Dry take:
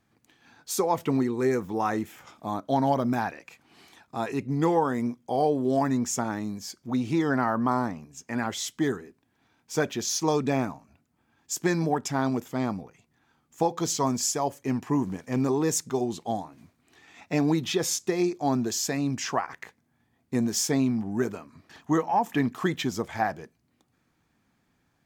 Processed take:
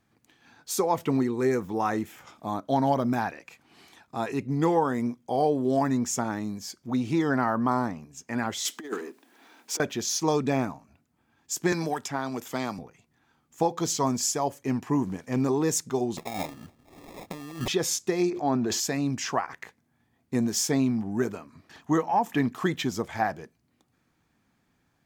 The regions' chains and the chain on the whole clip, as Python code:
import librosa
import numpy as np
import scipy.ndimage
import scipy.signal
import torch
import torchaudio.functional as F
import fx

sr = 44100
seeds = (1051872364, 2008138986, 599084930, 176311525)

y = fx.chain(x, sr, fx.law_mismatch(coded='mu'),
    fx.highpass(hz=270.0, slope=24),
    fx.over_compress(threshold_db=-31.0, ratio=-0.5), at=(8.65, 9.8))
y = fx.chain(y, sr, fx.low_shelf(hz=470.0, db=-9.5),
    fx.band_squash(depth_pct=100), at=(11.72, 12.79))
y = fx.chain(y, sr, fx.over_compress(threshold_db=-35.0, ratio=-1.0),
    fx.sample_hold(seeds[0], rate_hz=1500.0, jitter_pct=0), at=(16.17, 17.68))
y = fx.chain(y, sr, fx.bass_treble(bass_db=-4, treble_db=-13),
    fx.sustainer(db_per_s=21.0), at=(18.3, 18.8))